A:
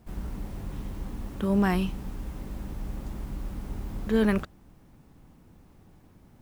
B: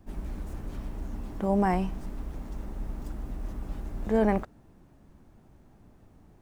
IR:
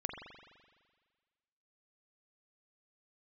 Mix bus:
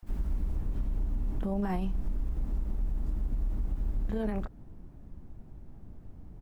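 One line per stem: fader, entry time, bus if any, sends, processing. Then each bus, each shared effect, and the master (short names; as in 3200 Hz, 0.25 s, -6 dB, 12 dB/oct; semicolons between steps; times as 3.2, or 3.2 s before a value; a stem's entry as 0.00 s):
-5.0 dB, 0.00 s, no send, HPF 830 Hz 24 dB/oct; auto duck -7 dB, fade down 0.75 s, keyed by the second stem
-2.5 dB, 25 ms, no send, tilt -3 dB/oct; compressor 2.5:1, threshold -24 dBFS, peak gain reduction 8.5 dB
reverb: off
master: limiter -23.5 dBFS, peak gain reduction 7.5 dB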